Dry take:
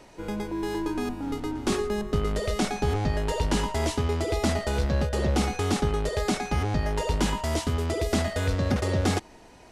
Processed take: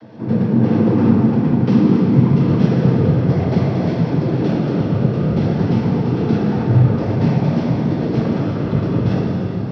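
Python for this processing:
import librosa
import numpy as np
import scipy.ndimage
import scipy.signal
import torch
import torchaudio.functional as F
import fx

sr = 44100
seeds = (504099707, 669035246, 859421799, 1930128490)

y = fx.tilt_eq(x, sr, slope=-3.5)
y = fx.rider(y, sr, range_db=5, speed_s=2.0)
y = fx.noise_vocoder(y, sr, seeds[0], bands=16)
y = fx.formant_shift(y, sr, semitones=-6)
y = fx.rev_plate(y, sr, seeds[1], rt60_s=4.7, hf_ratio=0.75, predelay_ms=0, drr_db=-4.0)
y = y * librosa.db_to_amplitude(1.5)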